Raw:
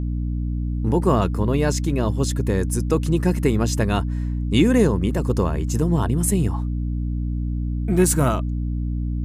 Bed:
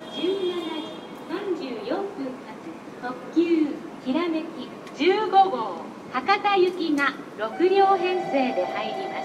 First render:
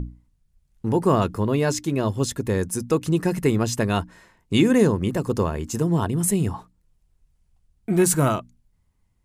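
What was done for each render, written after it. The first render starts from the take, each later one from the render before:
mains-hum notches 60/120/180/240/300 Hz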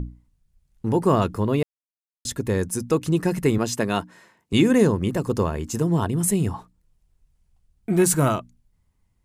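0:01.63–0:02.25: silence
0:03.58–0:04.53: high-pass filter 160 Hz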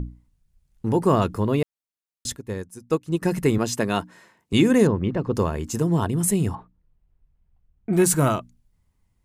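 0:02.36–0:03.22: expander for the loud parts 2.5 to 1, over −28 dBFS
0:04.87–0:05.33: high-frequency loss of the air 250 metres
0:06.55–0:07.93: high-frequency loss of the air 470 metres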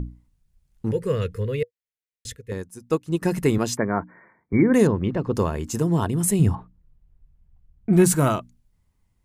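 0:00.91–0:02.52: drawn EQ curve 110 Hz 0 dB, 170 Hz −7 dB, 330 Hz −17 dB, 480 Hz +5 dB, 730 Hz −28 dB, 1,900 Hz +1 dB, 4,700 Hz −7 dB
0:03.77–0:04.74: linear-phase brick-wall low-pass 2,400 Hz
0:06.39–0:08.12: bass and treble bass +7 dB, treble −2 dB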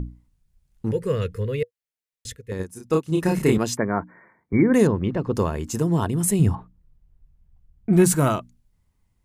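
0:02.56–0:03.57: double-tracking delay 32 ms −2 dB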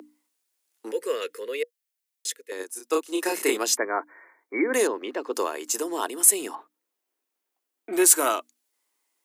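Butterworth high-pass 290 Hz 48 dB per octave
spectral tilt +2.5 dB per octave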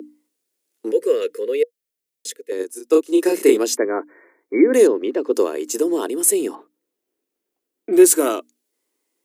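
low shelf with overshoot 600 Hz +9.5 dB, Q 1.5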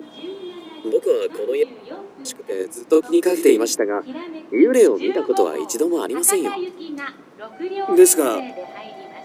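mix in bed −7.5 dB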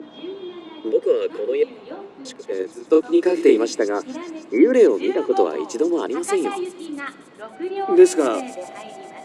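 high-frequency loss of the air 120 metres
delay with a high-pass on its return 139 ms, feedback 75%, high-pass 3,700 Hz, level −12 dB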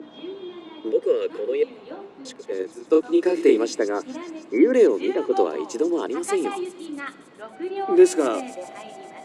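level −2.5 dB

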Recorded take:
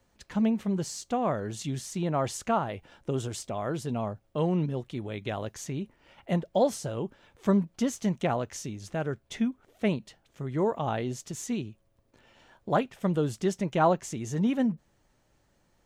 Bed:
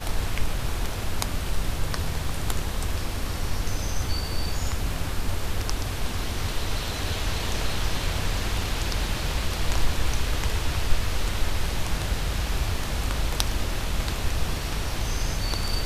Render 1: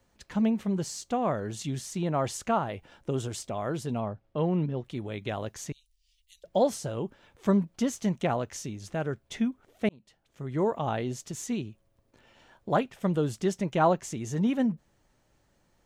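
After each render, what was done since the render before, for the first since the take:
0:04.00–0:04.84: high-frequency loss of the air 150 metres
0:05.72–0:06.44: inverse Chebyshev band-stop filter 170–1,100 Hz, stop band 70 dB
0:09.89–0:10.57: fade in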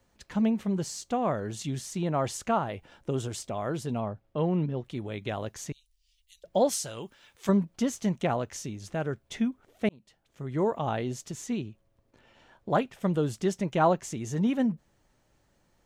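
0:06.69–0:07.49: tilt shelving filter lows −8.5 dB, about 1,400 Hz
0:11.33–0:12.75: high-shelf EQ 5,800 Hz −5.5 dB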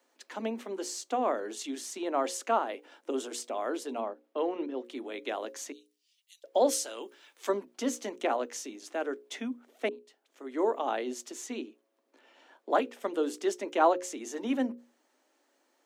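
Butterworth high-pass 250 Hz 72 dB per octave
mains-hum notches 60/120/180/240/300/360/420/480/540 Hz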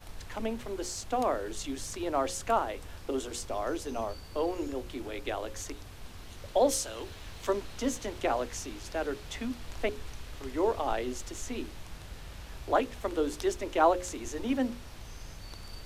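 mix in bed −18 dB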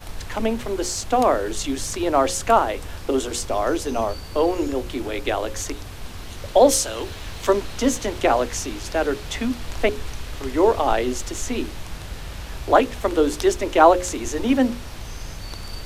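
level +11 dB
brickwall limiter −1 dBFS, peak gain reduction 1 dB

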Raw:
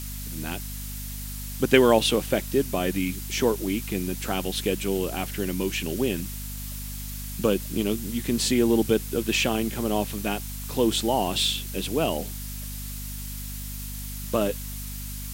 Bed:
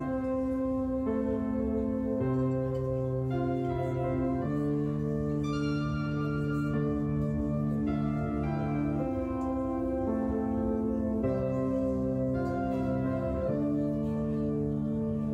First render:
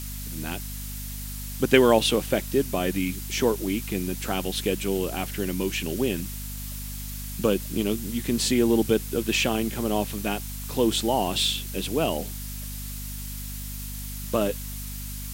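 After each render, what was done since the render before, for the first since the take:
no processing that can be heard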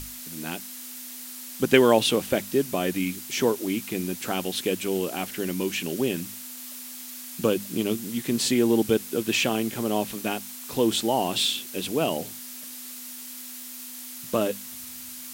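mains-hum notches 50/100/150/200 Hz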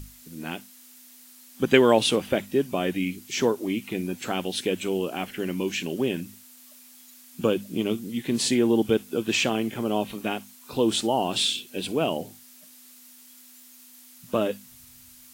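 noise reduction from a noise print 11 dB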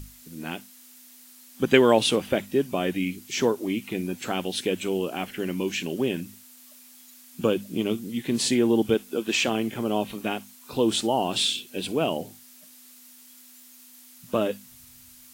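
0:08.94–0:09.48: parametric band 120 Hz −14 dB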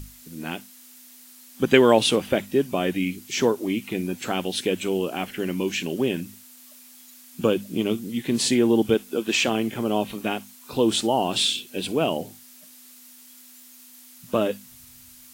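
level +2 dB
brickwall limiter −2 dBFS, peak gain reduction 1 dB

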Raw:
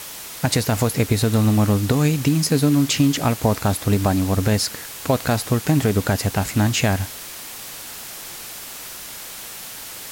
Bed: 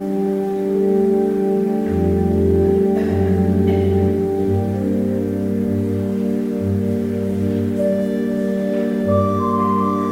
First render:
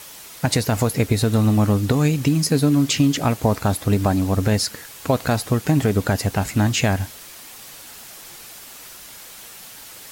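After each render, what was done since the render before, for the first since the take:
broadband denoise 6 dB, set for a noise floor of −35 dBFS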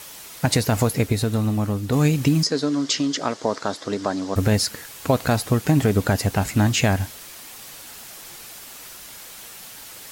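0:00.84–0:01.92: fade out quadratic, to −6.5 dB
0:02.43–0:04.36: loudspeaker in its box 340–7,000 Hz, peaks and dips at 780 Hz −5 dB, 2,500 Hz −9 dB, 5,100 Hz +4 dB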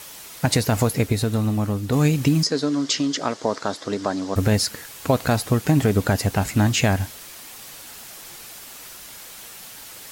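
no processing that can be heard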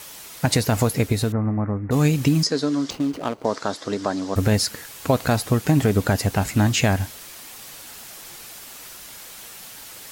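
0:01.32–0:01.91: elliptic low-pass filter 2,100 Hz
0:02.90–0:03.45: running median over 25 samples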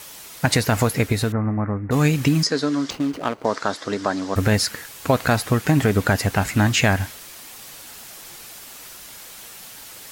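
dynamic equaliser 1,700 Hz, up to +6 dB, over −40 dBFS, Q 0.89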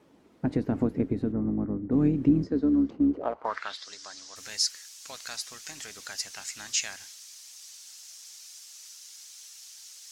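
sub-octave generator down 2 octaves, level 0 dB
band-pass filter sweep 280 Hz → 5,900 Hz, 0:03.08–0:03.89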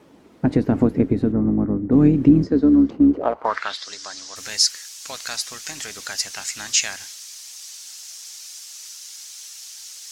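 level +9 dB
brickwall limiter −3 dBFS, peak gain reduction 1 dB

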